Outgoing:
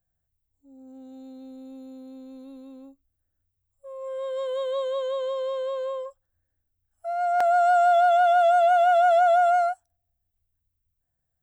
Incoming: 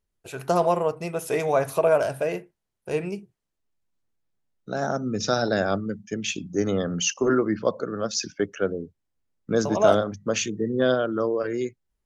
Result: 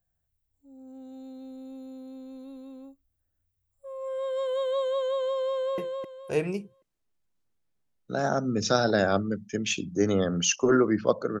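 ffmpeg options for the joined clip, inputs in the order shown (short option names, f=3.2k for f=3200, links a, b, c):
-filter_complex "[0:a]apad=whole_dur=11.4,atrim=end=11.4,atrim=end=5.782[a];[1:a]atrim=start=2.358:end=7.98[b];[a][b]acrossfade=d=0.004:c1=hsin:c2=hsin,asplit=2[c][d];[d]afade=t=in:st=5.52:d=0.01,afade=t=out:st=5.78:d=0.01,aecho=0:1:260|520|780|1040:0.595662|0.178699|0.0536096|0.0160829[e];[c][e]amix=inputs=2:normalize=0"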